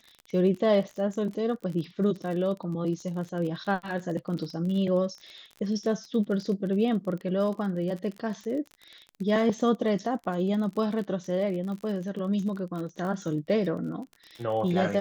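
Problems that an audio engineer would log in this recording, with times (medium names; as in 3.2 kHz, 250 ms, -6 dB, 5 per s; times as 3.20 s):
crackle 39 per s -35 dBFS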